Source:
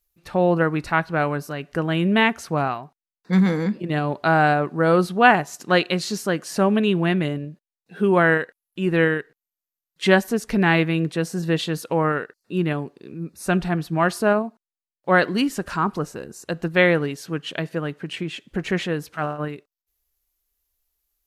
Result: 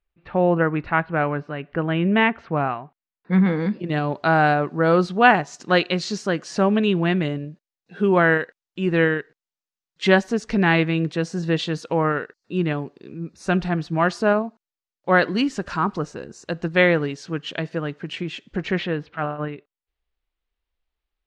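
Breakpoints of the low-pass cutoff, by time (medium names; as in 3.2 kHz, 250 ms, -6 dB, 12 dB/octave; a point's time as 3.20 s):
low-pass 24 dB/octave
3.44 s 2.9 kHz
3.90 s 6.7 kHz
18.48 s 6.7 kHz
19.04 s 3.5 kHz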